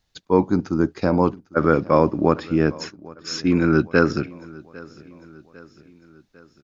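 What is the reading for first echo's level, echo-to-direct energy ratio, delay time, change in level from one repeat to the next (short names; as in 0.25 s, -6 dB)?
-22.0 dB, -20.5 dB, 0.801 s, -5.5 dB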